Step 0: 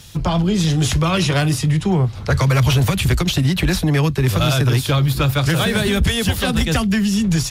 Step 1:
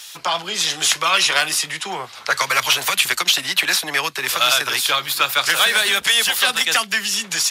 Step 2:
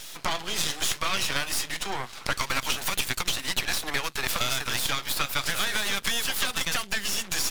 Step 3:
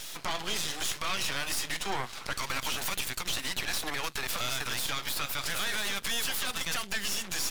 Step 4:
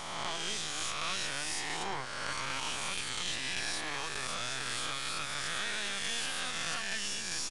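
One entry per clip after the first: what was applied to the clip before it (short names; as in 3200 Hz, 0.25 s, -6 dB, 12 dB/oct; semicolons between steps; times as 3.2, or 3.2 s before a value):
HPF 1100 Hz 12 dB/oct; gain +7 dB
compressor, threshold -20 dBFS, peak gain reduction 8.5 dB; half-wave rectifier
limiter -19 dBFS, peak gain reduction 10.5 dB
spectral swells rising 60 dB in 1.89 s; downsampling 22050 Hz; gain -7.5 dB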